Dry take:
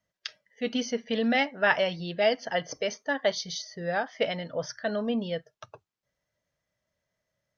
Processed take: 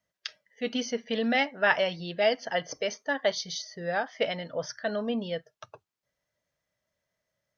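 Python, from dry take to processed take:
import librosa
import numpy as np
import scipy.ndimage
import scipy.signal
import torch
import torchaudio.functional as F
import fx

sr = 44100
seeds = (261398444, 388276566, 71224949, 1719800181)

y = fx.low_shelf(x, sr, hz=240.0, db=-4.0)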